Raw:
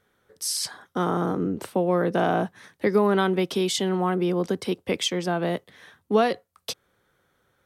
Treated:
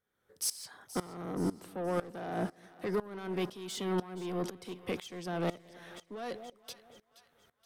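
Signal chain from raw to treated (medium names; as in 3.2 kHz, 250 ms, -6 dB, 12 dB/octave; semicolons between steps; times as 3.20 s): treble shelf 11 kHz +5.5 dB; peak limiter -17 dBFS, peak gain reduction 8.5 dB; saturation -24 dBFS, distortion -12 dB; two-band feedback delay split 800 Hz, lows 213 ms, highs 475 ms, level -14.5 dB; sawtooth tremolo in dB swelling 2 Hz, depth 20 dB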